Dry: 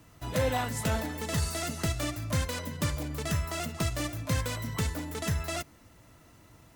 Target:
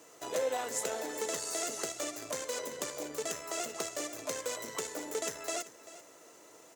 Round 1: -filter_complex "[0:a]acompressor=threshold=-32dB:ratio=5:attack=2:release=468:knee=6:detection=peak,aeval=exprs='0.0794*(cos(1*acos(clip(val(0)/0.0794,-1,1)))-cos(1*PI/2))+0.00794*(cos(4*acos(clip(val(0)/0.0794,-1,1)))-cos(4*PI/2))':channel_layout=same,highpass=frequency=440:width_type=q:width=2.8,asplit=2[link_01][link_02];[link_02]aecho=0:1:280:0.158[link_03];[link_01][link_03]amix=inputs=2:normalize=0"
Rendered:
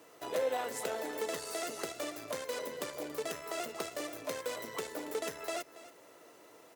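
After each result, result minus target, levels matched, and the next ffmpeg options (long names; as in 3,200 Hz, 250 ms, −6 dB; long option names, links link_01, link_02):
8,000 Hz band −6.5 dB; echo 109 ms early
-filter_complex "[0:a]acompressor=threshold=-32dB:ratio=5:attack=2:release=468:knee=6:detection=peak,aeval=exprs='0.0794*(cos(1*acos(clip(val(0)/0.0794,-1,1)))-cos(1*PI/2))+0.00794*(cos(4*acos(clip(val(0)/0.0794,-1,1)))-cos(4*PI/2))':channel_layout=same,highpass=frequency=440:width_type=q:width=2.8,equalizer=frequency=6900:width=1.8:gain=11,asplit=2[link_01][link_02];[link_02]aecho=0:1:280:0.158[link_03];[link_01][link_03]amix=inputs=2:normalize=0"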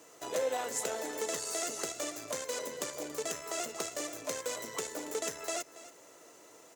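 echo 109 ms early
-filter_complex "[0:a]acompressor=threshold=-32dB:ratio=5:attack=2:release=468:knee=6:detection=peak,aeval=exprs='0.0794*(cos(1*acos(clip(val(0)/0.0794,-1,1)))-cos(1*PI/2))+0.00794*(cos(4*acos(clip(val(0)/0.0794,-1,1)))-cos(4*PI/2))':channel_layout=same,highpass=frequency=440:width_type=q:width=2.8,equalizer=frequency=6900:width=1.8:gain=11,asplit=2[link_01][link_02];[link_02]aecho=0:1:389:0.158[link_03];[link_01][link_03]amix=inputs=2:normalize=0"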